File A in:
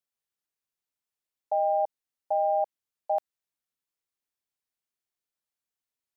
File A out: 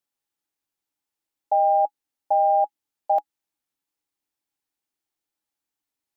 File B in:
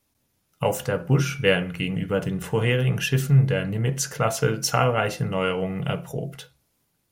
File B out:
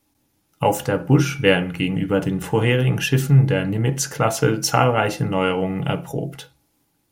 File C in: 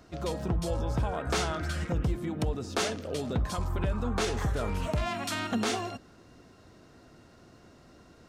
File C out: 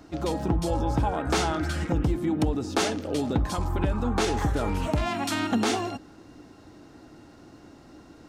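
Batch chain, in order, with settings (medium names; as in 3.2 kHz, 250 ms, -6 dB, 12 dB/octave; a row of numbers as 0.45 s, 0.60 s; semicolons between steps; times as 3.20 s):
small resonant body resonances 300/830 Hz, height 10 dB, ringing for 55 ms; trim +3 dB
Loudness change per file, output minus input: +6.5 LU, +4.0 LU, +4.5 LU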